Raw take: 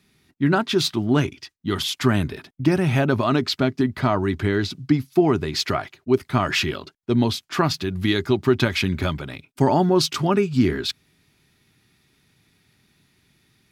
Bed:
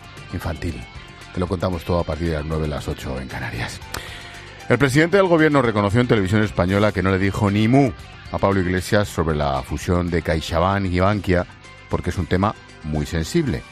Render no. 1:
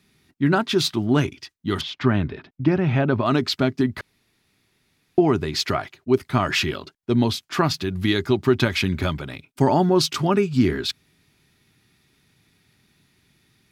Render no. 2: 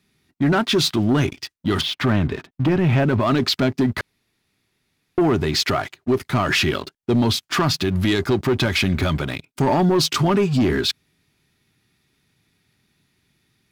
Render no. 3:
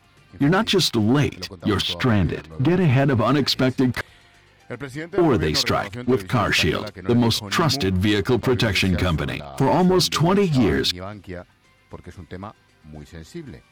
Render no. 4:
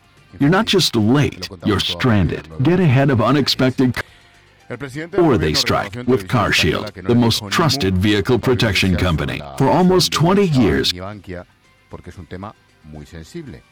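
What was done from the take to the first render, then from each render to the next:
0:01.81–0:03.26: high-frequency loss of the air 240 metres; 0:04.01–0:05.18: fill with room tone
leveller curve on the samples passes 2; brickwall limiter −12 dBFS, peak gain reduction 6.5 dB
mix in bed −16 dB
level +4 dB

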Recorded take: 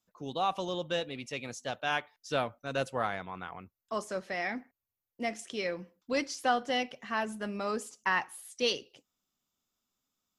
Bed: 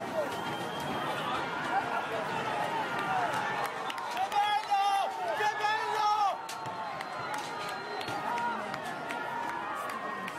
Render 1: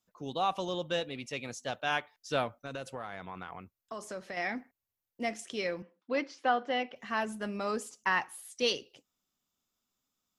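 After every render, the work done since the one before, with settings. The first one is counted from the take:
0:02.60–0:04.37: downward compressor 5 to 1, threshold −36 dBFS
0:05.82–0:06.96: band-pass filter 230–2,800 Hz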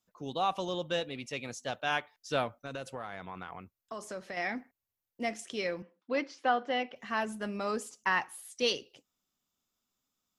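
no processing that can be heard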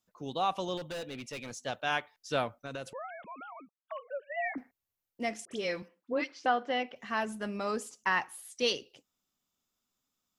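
0:00.77–0:01.59: hard clipping −36 dBFS
0:02.93–0:04.58: three sine waves on the formant tracks
0:05.45–0:06.46: all-pass dispersion highs, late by 65 ms, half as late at 1,600 Hz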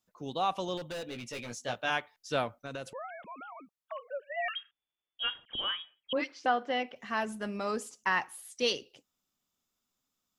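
0:01.05–0:01.90: double-tracking delay 17 ms −5 dB
0:04.48–0:06.13: voice inversion scrambler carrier 3,500 Hz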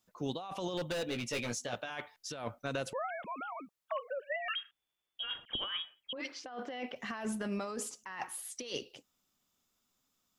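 compressor whose output falls as the input rises −38 dBFS, ratio −1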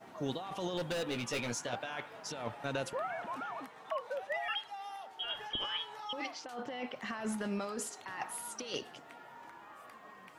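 mix in bed −17 dB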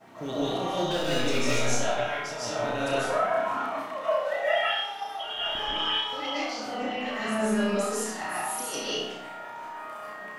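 flutter between parallel walls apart 5.5 metres, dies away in 0.5 s
comb and all-pass reverb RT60 0.73 s, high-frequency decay 0.7×, pre-delay 110 ms, DRR −8 dB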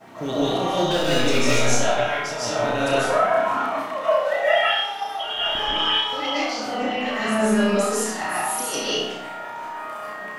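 level +6.5 dB

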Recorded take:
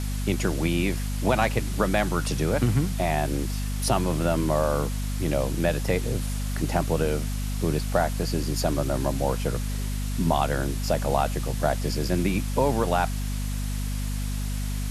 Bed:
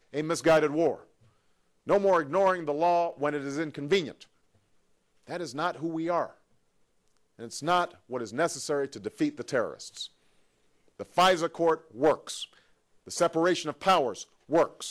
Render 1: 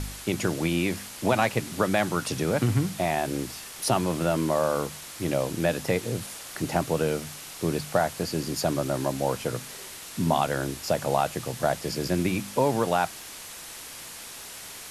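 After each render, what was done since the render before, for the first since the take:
hum removal 50 Hz, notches 5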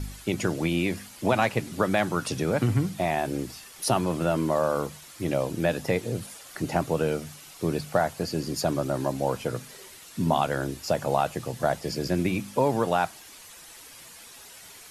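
broadband denoise 9 dB, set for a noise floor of −42 dBFS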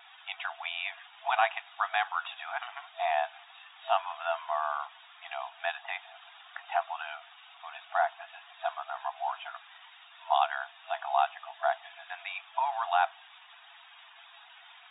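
brick-wall band-pass 660–3,800 Hz
parametric band 2,100 Hz −4.5 dB 0.33 octaves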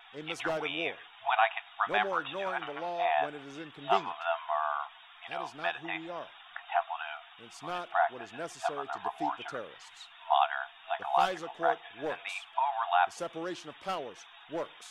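mix in bed −12.5 dB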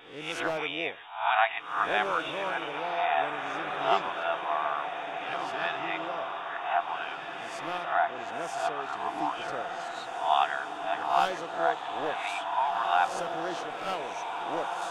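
peak hold with a rise ahead of every peak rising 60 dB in 0.50 s
feedback delay with all-pass diffusion 1,832 ms, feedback 50%, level −6 dB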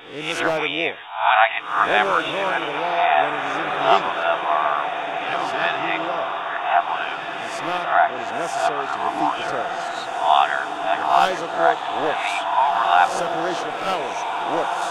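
level +9.5 dB
brickwall limiter −3 dBFS, peak gain reduction 2.5 dB

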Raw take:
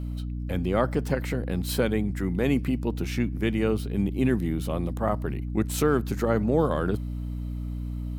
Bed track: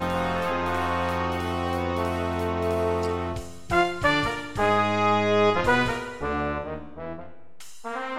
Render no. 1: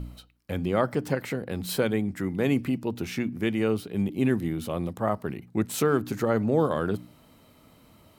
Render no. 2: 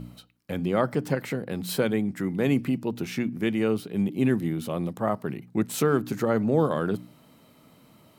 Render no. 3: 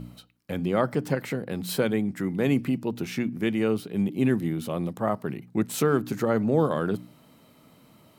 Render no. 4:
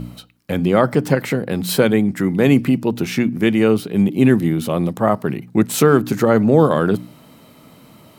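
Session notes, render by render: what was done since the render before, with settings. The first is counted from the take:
hum removal 60 Hz, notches 5
low shelf with overshoot 100 Hz −9 dB, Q 1.5
no processing that can be heard
level +10 dB; brickwall limiter −1 dBFS, peak gain reduction 1.5 dB

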